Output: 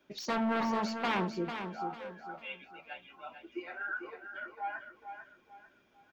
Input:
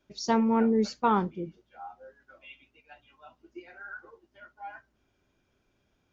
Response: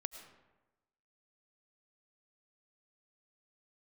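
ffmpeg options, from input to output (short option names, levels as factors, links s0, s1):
-filter_complex "[0:a]aemphasis=mode=production:type=75kf,asplit=2[s0][s1];[s1]acompressor=threshold=0.0126:ratio=6,volume=1.12[s2];[s0][s2]amix=inputs=2:normalize=0,aeval=exprs='0.075*(abs(mod(val(0)/0.075+3,4)-2)-1)':c=same,acrossover=split=160 3300:gain=0.178 1 0.126[s3][s4][s5];[s3][s4][s5]amix=inputs=3:normalize=0,aecho=1:1:447|894|1341|1788:0.398|0.135|0.046|0.0156,volume=0.794"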